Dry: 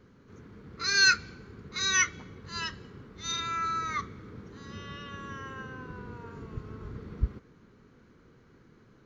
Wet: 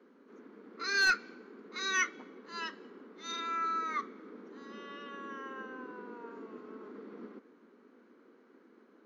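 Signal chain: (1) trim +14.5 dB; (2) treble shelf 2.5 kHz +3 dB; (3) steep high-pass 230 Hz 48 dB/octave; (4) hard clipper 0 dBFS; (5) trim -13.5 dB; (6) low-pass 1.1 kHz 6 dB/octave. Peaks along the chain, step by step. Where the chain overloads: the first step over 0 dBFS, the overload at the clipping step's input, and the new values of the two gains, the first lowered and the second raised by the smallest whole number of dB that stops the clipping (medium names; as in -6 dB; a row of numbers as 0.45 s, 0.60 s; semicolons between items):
+4.5 dBFS, +6.0 dBFS, +6.5 dBFS, 0.0 dBFS, -13.5 dBFS, -17.5 dBFS; step 1, 6.5 dB; step 1 +7.5 dB, step 5 -6.5 dB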